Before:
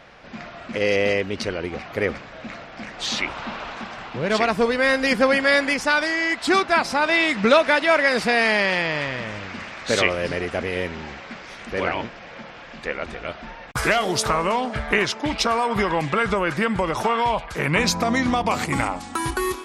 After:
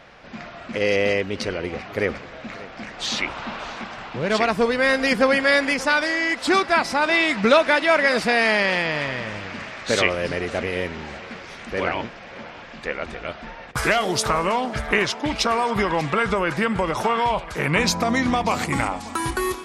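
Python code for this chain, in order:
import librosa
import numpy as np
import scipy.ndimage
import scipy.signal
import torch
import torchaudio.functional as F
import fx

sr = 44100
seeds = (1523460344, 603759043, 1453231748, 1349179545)

y = fx.echo_feedback(x, sr, ms=586, feedback_pct=34, wet_db=-19.0)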